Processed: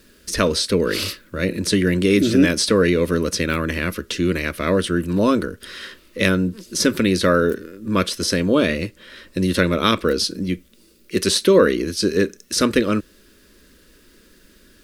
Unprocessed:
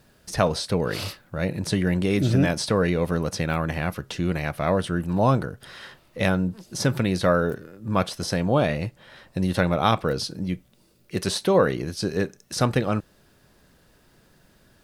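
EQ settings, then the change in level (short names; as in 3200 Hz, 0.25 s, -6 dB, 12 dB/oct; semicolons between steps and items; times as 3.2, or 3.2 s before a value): fixed phaser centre 320 Hz, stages 4; +9.0 dB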